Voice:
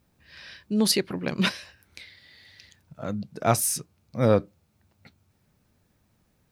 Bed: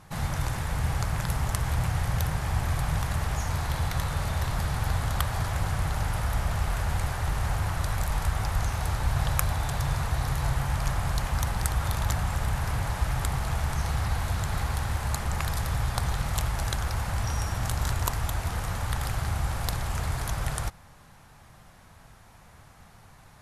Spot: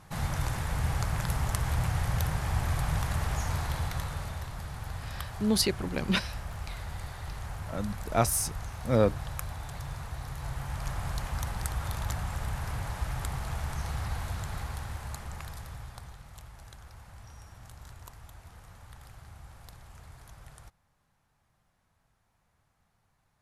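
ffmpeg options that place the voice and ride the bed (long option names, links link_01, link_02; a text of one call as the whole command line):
ffmpeg -i stem1.wav -i stem2.wav -filter_complex "[0:a]adelay=4700,volume=-3.5dB[link_01];[1:a]volume=3dB,afade=type=out:start_time=3.5:duration=1:silence=0.354813,afade=type=in:start_time=10.33:duration=0.73:silence=0.562341,afade=type=out:start_time=14.17:duration=2.03:silence=0.188365[link_02];[link_01][link_02]amix=inputs=2:normalize=0" out.wav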